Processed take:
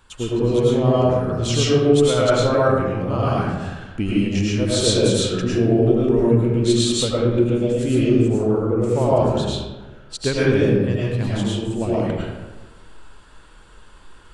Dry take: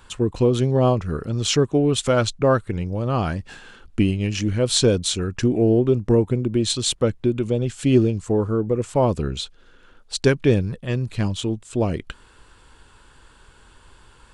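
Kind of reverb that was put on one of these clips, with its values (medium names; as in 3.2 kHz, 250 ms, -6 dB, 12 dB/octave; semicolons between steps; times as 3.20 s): algorithmic reverb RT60 1.3 s, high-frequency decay 0.5×, pre-delay 65 ms, DRR -7.5 dB; trim -5.5 dB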